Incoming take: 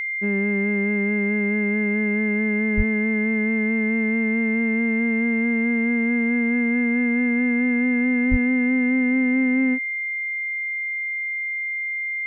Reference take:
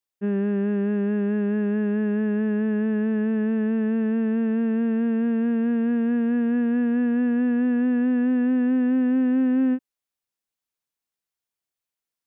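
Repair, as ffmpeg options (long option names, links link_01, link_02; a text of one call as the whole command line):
ffmpeg -i in.wav -filter_complex "[0:a]bandreject=frequency=2100:width=30,asplit=3[link_01][link_02][link_03];[link_01]afade=type=out:start_time=2.76:duration=0.02[link_04];[link_02]highpass=frequency=140:width=0.5412,highpass=frequency=140:width=1.3066,afade=type=in:start_time=2.76:duration=0.02,afade=type=out:start_time=2.88:duration=0.02[link_05];[link_03]afade=type=in:start_time=2.88:duration=0.02[link_06];[link_04][link_05][link_06]amix=inputs=3:normalize=0,asplit=3[link_07][link_08][link_09];[link_07]afade=type=out:start_time=8.3:duration=0.02[link_10];[link_08]highpass=frequency=140:width=0.5412,highpass=frequency=140:width=1.3066,afade=type=in:start_time=8.3:duration=0.02,afade=type=out:start_time=8.42:duration=0.02[link_11];[link_09]afade=type=in:start_time=8.42:duration=0.02[link_12];[link_10][link_11][link_12]amix=inputs=3:normalize=0" out.wav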